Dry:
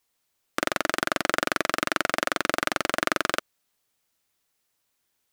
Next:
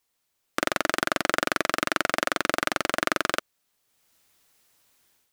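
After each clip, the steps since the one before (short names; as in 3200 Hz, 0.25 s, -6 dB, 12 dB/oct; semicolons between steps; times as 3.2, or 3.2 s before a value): AGC gain up to 11.5 dB; gain -1 dB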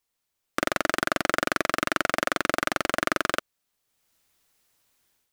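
low shelf 76 Hz +5.5 dB; sample leveller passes 1; gain -2.5 dB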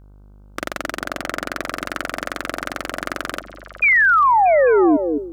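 buzz 50 Hz, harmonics 31, -44 dBFS -8 dB/oct; painted sound fall, 3.82–4.97, 280–2500 Hz -12 dBFS; delay with a stepping band-pass 0.211 s, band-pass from 230 Hz, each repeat 1.4 oct, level -6 dB; gain -1.5 dB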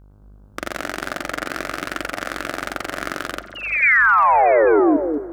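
reverb RT60 2.8 s, pre-delay 5 ms, DRR 18.5 dB; echoes that change speed 0.113 s, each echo +1 st, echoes 3, each echo -6 dB; gain -1.5 dB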